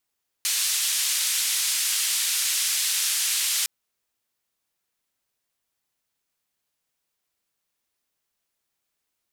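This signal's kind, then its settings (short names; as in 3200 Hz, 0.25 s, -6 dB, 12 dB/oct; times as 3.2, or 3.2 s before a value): noise band 2500–11000 Hz, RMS -24.5 dBFS 3.21 s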